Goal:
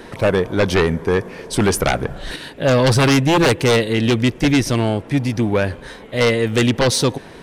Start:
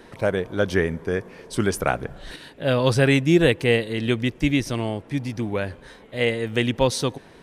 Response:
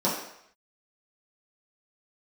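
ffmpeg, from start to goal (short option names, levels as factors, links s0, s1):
-af "aeval=exprs='0.668*sin(PI/2*3.98*val(0)/0.668)':c=same,volume=0.473"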